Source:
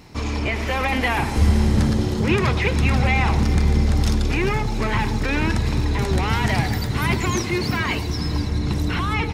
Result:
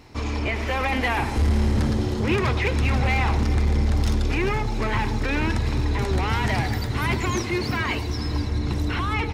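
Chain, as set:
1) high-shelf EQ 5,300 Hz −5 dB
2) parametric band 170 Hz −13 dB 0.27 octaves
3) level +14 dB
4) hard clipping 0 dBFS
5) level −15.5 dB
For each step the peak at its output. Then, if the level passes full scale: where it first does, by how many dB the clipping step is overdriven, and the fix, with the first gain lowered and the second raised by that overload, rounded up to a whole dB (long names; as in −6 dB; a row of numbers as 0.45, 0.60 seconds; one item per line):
−6.5, −6.5, +7.5, 0.0, −15.5 dBFS
step 3, 7.5 dB
step 3 +6 dB, step 5 −7.5 dB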